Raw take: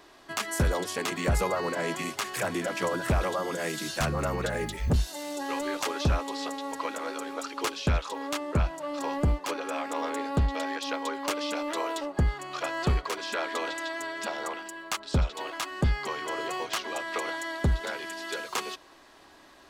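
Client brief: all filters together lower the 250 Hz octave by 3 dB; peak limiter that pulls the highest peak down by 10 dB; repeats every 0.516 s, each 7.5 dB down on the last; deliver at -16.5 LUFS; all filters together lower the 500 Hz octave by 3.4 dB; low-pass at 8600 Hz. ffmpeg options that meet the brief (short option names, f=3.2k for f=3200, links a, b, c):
-af "lowpass=8.6k,equalizer=f=250:t=o:g=-3,equalizer=f=500:t=o:g=-3.5,alimiter=level_in=3.5dB:limit=-24dB:level=0:latency=1,volume=-3.5dB,aecho=1:1:516|1032|1548|2064|2580:0.422|0.177|0.0744|0.0312|0.0131,volume=19dB"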